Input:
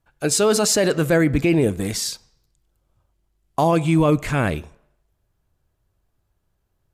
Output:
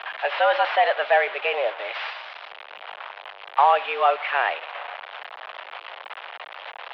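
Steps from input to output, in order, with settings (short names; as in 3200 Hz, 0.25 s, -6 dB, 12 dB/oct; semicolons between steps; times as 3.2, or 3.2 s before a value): delta modulation 32 kbps, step -26 dBFS; mistuned SSB +130 Hz 510–3100 Hz; gain +3 dB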